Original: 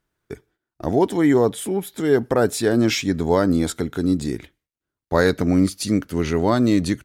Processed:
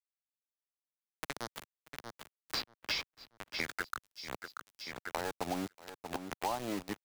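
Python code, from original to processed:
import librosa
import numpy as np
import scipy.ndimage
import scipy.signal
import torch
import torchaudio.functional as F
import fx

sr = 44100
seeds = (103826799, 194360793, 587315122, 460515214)

p1 = scipy.signal.sosfilt(scipy.signal.butter(2, 6700.0, 'lowpass', fs=sr, output='sos'), x)
p2 = fx.bass_treble(p1, sr, bass_db=4, treble_db=-1)
p3 = fx.auto_swell(p2, sr, attack_ms=355.0)
p4 = fx.filter_sweep_bandpass(p3, sr, from_hz=4700.0, to_hz=830.0, start_s=3.21, end_s=4.14, q=6.3)
p5 = np.where(np.abs(p4) >= 10.0 ** (-41.0 / 20.0), p4, 0.0)
p6 = p5 + fx.echo_feedback(p5, sr, ms=634, feedback_pct=43, wet_db=-19, dry=0)
p7 = fx.band_squash(p6, sr, depth_pct=100)
y = F.gain(torch.from_numpy(p7), 7.0).numpy()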